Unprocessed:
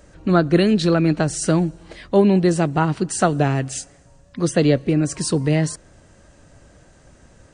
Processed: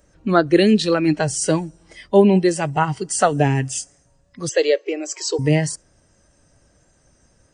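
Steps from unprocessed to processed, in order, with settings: spectral noise reduction 12 dB; 4.49–5.39 s: brick-wall FIR band-pass 320–8100 Hz; trim +3 dB

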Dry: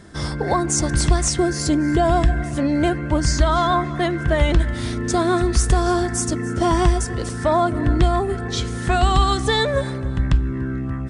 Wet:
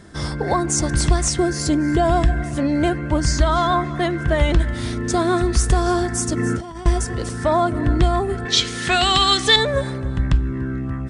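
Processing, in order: 6.37–6.86 s: compressor with a negative ratio -24 dBFS, ratio -0.5; 8.45–9.56 s: frequency weighting D

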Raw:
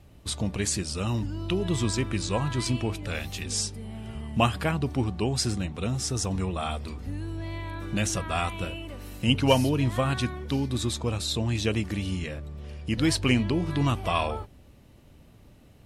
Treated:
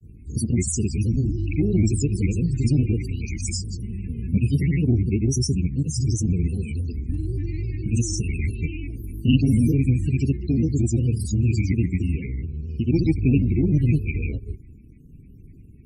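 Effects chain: dynamic bell 1.3 kHz, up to -6 dB, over -44 dBFS, Q 1.5; elliptic band-stop 440–2500 Hz, stop band 70 dB; granulator 100 ms, pitch spread up and down by 3 st; static phaser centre 1.4 kHz, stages 4; in parallel at -9 dB: hard clipper -27.5 dBFS, distortion -12 dB; on the sum: loudest bins only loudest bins 32; trim +8 dB; Opus 48 kbps 48 kHz

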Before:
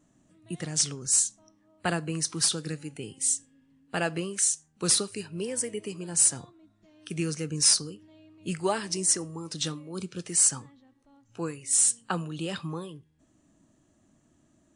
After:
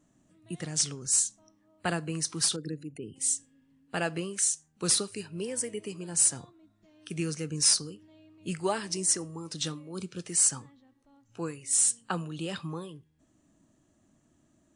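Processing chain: 2.56–3.16 s: resonances exaggerated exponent 2; trim -2 dB

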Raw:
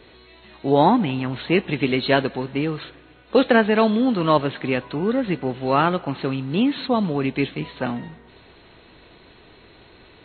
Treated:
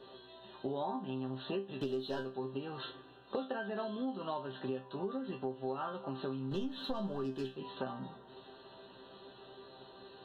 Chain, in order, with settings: high-pass 670 Hz 6 dB/octave; 1.81–2.23 s: waveshaping leveller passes 2; peaking EQ 1.5 kHz -4 dB 0.3 oct; 6.51–7.47 s: waveshaping leveller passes 2; Butterworth band-stop 2.2 kHz, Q 1.8; tilt EQ -2 dB/octave; chord resonator C3 fifth, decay 0.23 s; compression 8:1, threshold -47 dBFS, peak gain reduction 25.5 dB; trim +11.5 dB

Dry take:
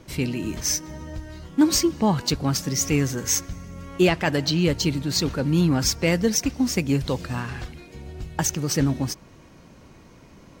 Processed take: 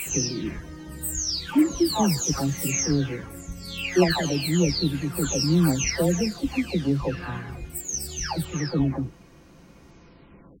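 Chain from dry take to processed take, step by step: delay that grows with frequency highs early, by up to 693 ms

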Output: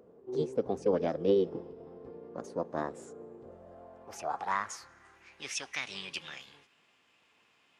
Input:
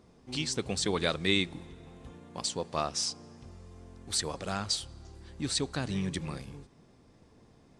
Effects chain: band-pass sweep 300 Hz -> 1.9 kHz, 3.30–5.65 s; formant shift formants +6 st; trim +8.5 dB

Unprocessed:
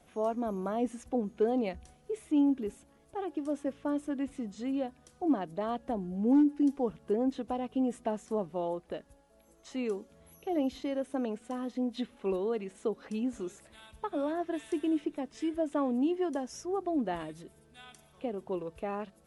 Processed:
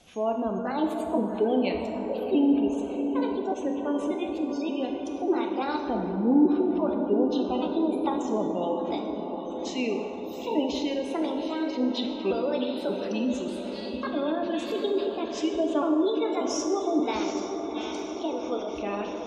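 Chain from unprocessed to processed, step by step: pitch shift switched off and on +4 st, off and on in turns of 586 ms; high-order bell 4.1 kHz +9.5 dB; echo that smears into a reverb 761 ms, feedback 67%, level -7.5 dB; spectral gate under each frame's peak -30 dB strong; plate-style reverb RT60 2.4 s, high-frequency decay 0.55×, DRR 3 dB; trim +3 dB

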